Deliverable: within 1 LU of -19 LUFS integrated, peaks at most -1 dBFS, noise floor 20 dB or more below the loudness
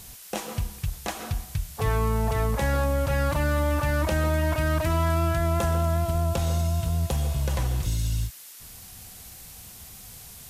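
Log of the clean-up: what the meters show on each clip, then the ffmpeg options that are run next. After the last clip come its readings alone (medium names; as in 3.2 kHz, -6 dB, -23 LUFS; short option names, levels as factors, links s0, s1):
noise floor -45 dBFS; noise floor target -47 dBFS; loudness -26.5 LUFS; peak level -12.5 dBFS; loudness target -19.0 LUFS
-> -af "afftdn=nr=6:nf=-45"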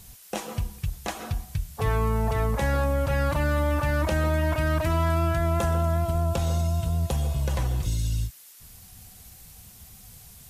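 noise floor -49 dBFS; loudness -26.5 LUFS; peak level -13.5 dBFS; loudness target -19.0 LUFS
-> -af "volume=2.37"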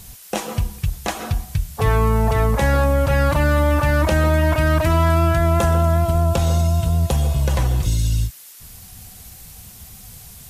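loudness -19.0 LUFS; peak level -6.0 dBFS; noise floor -42 dBFS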